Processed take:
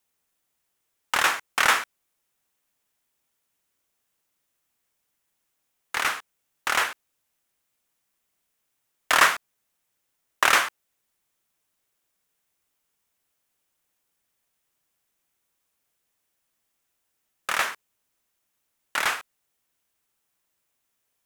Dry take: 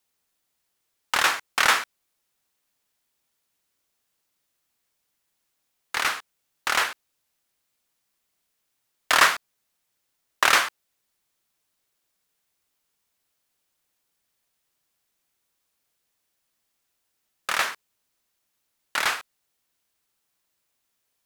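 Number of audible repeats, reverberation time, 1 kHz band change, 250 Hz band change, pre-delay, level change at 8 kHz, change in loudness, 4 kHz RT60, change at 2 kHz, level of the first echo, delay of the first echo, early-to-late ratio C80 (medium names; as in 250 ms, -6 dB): no echo, no reverb, 0.0 dB, 0.0 dB, no reverb, -1.0 dB, -0.5 dB, no reverb, -0.5 dB, no echo, no echo, no reverb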